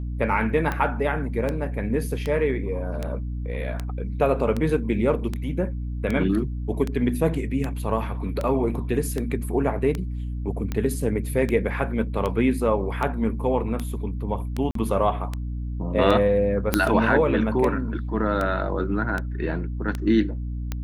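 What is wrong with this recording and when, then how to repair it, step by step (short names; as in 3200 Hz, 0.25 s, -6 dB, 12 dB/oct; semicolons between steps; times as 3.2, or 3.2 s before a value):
hum 60 Hz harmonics 5 -29 dBFS
tick 78 rpm -14 dBFS
14.71–14.75 gap 43 ms
16.74 pop -3 dBFS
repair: de-click; de-hum 60 Hz, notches 5; interpolate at 14.71, 43 ms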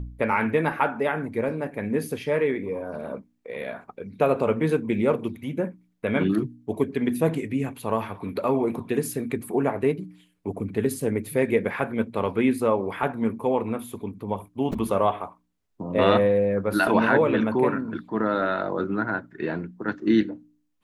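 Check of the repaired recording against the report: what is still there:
none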